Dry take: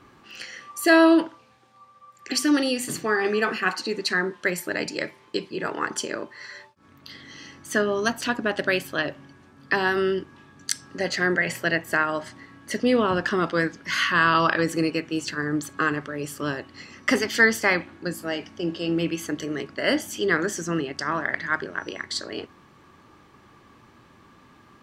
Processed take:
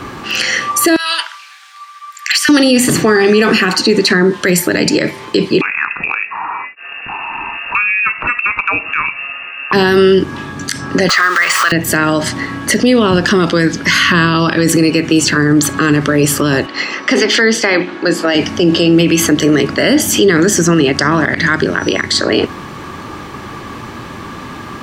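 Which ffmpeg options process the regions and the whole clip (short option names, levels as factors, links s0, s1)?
-filter_complex "[0:a]asettb=1/sr,asplit=3[s0][s1][s2];[s0]atrim=end=0.964[s3];[s1]atrim=start=0.96:end=2.49,asetpts=PTS-STARTPTS,afade=t=in:d=0.004:c=qsin,afade=t=out:st=1.526:d=0.004:c=qsin,highpass=f=1400:w=0.5412,highpass=f=1400:w=1.3066,acompressor=threshold=0.0355:ratio=6:attack=3.2:release=140:knee=1:detection=peak,asoftclip=type=hard:threshold=0.0562[s4];[s2]atrim=start=2.486[s5];[s3][s4]acrossfade=d=0.004:c1=hsin:c2=qsin[s6];[s6][s5]acrossfade=d=0.004:c1=qsin:c2=hsin,asettb=1/sr,asplit=3[s7][s8][s9];[s7]atrim=end=5.614[s10];[s8]atrim=start=5.61:end=9.73,asetpts=PTS-STARTPTS,afade=t=in:d=0.004:c=qsin,afade=t=out:st=4.116:d=0.004:c=qsin,lowpass=f=2500:t=q:w=0.5098,lowpass=f=2500:t=q:w=0.6013,lowpass=f=2500:t=q:w=0.9,lowpass=f=2500:t=q:w=2.563,afreqshift=-2900,acompressor=threshold=0.00562:ratio=2.5:attack=3.2:release=140:knee=1:detection=peak[s11];[s9]atrim=start=9.726[s12];[s10][s11]acrossfade=d=0.004:c1=hsin:c2=qsin[s13];[s13][s12]acrossfade=d=0.004:c1=qsin:c2=hsin,asettb=1/sr,asplit=3[s14][s15][s16];[s14]atrim=end=11.094[s17];[s15]atrim=start=11.09:end=11.72,asetpts=PTS-STARTPTS,afade=t=in:d=0.004:c=qsin,afade=t=out:st=0.626:d=0.004:c=qsin,aeval=exprs='val(0)+0.5*0.0266*sgn(val(0))':c=same,highpass=f=1200:t=q:w=13,equalizer=f=13000:w=0.91:g=-14[s18];[s16]atrim=start=11.716[s19];[s17][s18]acrossfade=d=0.004:c1=hsin:c2=qsin[s20];[s20][s19]acrossfade=d=0.004:c1=qsin:c2=hsin,asettb=1/sr,asplit=3[s21][s22][s23];[s21]atrim=end=16.664[s24];[s22]atrim=start=16.66:end=18.35,asetpts=PTS-STARTPTS,afade=t=in:d=0.004:c=qsin,afade=t=out:st=1.686:d=0.004:c=qsin,highpass=350,lowpass=4600,bandreject=f=60:t=h:w=6,bandreject=f=120:t=h:w=6,bandreject=f=180:t=h:w=6,bandreject=f=240:t=h:w=6,bandreject=f=300:t=h:w=6,bandreject=f=360:t=h:w=6,bandreject=f=420:t=h:w=6,bandreject=f=480:t=h:w=6[s25];[s23]atrim=start=18.346[s26];[s24][s25]acrossfade=d=0.004:c1=hsin:c2=qsin[s27];[s27][s26]acrossfade=d=0.004:c1=qsin:c2=hsin,acrossover=split=380|2800[s28][s29][s30];[s28]acompressor=threshold=0.0398:ratio=4[s31];[s29]acompressor=threshold=0.0158:ratio=4[s32];[s30]acompressor=threshold=0.0126:ratio=4[s33];[s31][s32][s33]amix=inputs=3:normalize=0,alimiter=level_in=21.1:limit=0.891:release=50:level=0:latency=1,volume=0.891"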